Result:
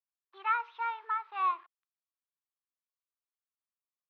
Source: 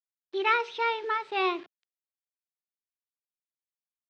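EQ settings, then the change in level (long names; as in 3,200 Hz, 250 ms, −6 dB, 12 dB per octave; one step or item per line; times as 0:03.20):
four-pole ladder band-pass 1,200 Hz, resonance 70%
+3.0 dB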